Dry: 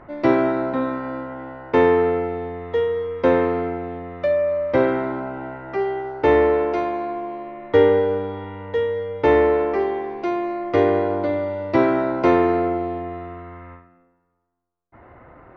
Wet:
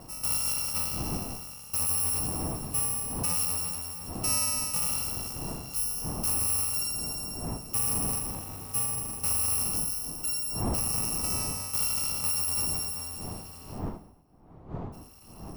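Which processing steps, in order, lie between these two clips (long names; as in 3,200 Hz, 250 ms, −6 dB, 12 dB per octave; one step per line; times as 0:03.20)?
samples in bit-reversed order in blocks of 128 samples
wind on the microphone 240 Hz −31 dBFS
brickwall limiter −12.5 dBFS, peak gain reduction 8 dB
flat-topped bell 920 Hz +8.5 dB 1.1 octaves
level −8 dB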